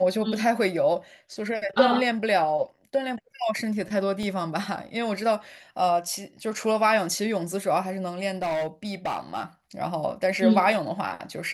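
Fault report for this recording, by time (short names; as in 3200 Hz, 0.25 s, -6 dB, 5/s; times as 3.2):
4.23 gap 2.2 ms
8.42–9.43 clipped -24 dBFS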